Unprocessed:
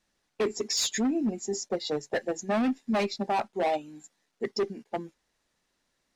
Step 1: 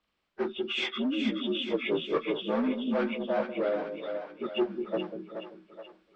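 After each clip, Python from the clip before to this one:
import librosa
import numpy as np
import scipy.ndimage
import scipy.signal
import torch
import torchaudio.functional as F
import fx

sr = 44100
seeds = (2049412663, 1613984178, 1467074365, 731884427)

y = fx.partial_stretch(x, sr, pct=79)
y = fx.rider(y, sr, range_db=10, speed_s=0.5)
y = fx.echo_split(y, sr, split_hz=500.0, low_ms=191, high_ms=426, feedback_pct=52, wet_db=-6.0)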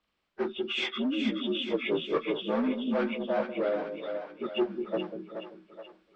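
y = x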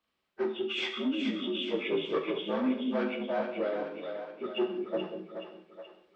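y = fx.low_shelf(x, sr, hz=80.0, db=-9.0)
y = fx.rev_gated(y, sr, seeds[0], gate_ms=230, shape='falling', drr_db=4.0)
y = y * 10.0 ** (-3.0 / 20.0)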